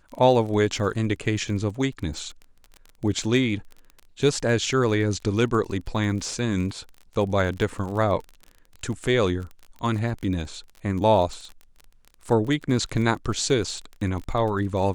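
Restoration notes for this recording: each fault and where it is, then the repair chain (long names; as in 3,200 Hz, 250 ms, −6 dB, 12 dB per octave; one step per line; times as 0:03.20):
surface crackle 28 per second −32 dBFS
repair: click removal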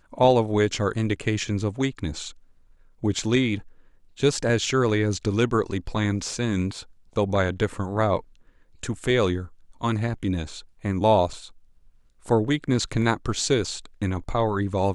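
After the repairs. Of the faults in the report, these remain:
none of them is left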